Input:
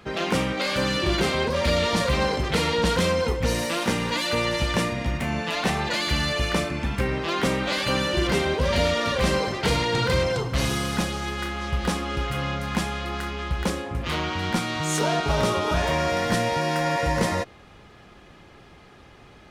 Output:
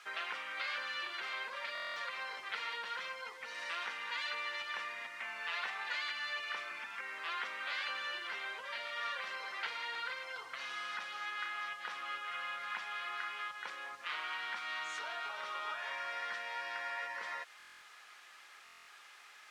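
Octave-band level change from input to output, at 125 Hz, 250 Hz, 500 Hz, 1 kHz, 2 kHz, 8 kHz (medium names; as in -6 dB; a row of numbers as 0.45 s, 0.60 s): under -40 dB, -40.0 dB, -27.5 dB, -14.0 dB, -9.5 dB, -23.5 dB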